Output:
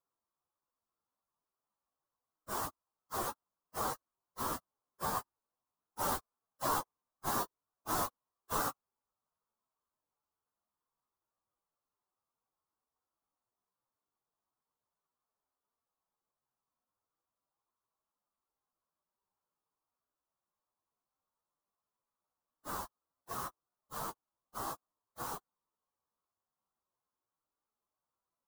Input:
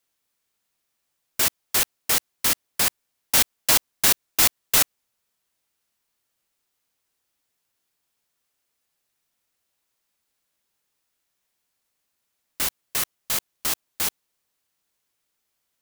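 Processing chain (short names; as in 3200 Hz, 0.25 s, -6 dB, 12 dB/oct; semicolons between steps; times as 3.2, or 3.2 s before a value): resonant high shelf 1600 Hz -12.5 dB, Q 3; plain phase-vocoder stretch 1.8×; gain -7 dB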